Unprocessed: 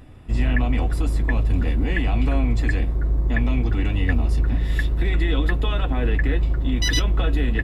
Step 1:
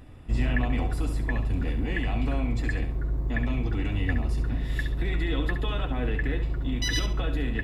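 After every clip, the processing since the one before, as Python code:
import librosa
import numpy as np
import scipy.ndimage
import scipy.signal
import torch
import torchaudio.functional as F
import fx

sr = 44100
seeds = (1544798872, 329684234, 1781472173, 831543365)

y = fx.rider(x, sr, range_db=4, speed_s=2.0)
y = fx.echo_feedback(y, sr, ms=68, feedback_pct=27, wet_db=-9)
y = y * 10.0 ** (-5.5 / 20.0)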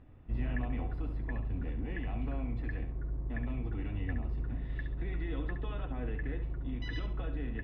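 y = fx.air_absorb(x, sr, metres=430.0)
y = y * 10.0 ** (-8.5 / 20.0)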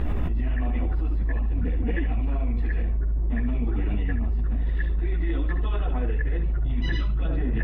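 y = fx.chorus_voices(x, sr, voices=6, hz=1.1, base_ms=15, depth_ms=3.0, mix_pct=65)
y = fx.env_flatten(y, sr, amount_pct=100)
y = y * 10.0 ** (4.5 / 20.0)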